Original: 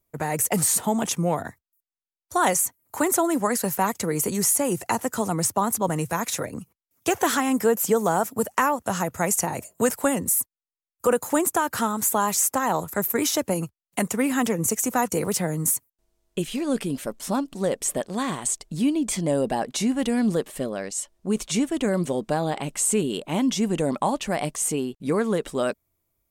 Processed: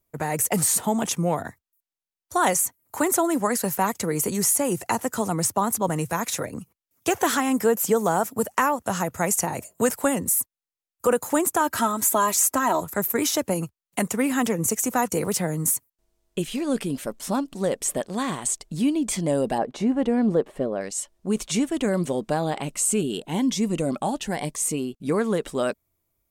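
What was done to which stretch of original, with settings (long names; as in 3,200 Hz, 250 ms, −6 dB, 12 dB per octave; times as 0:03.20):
0:11.60–0:12.82: comb filter 3.1 ms
0:19.58–0:20.81: drawn EQ curve 210 Hz 0 dB, 430 Hz +4 dB, 840 Hz +2 dB, 13,000 Hz −20 dB
0:22.71–0:25.09: phaser whose notches keep moving one way rising 1 Hz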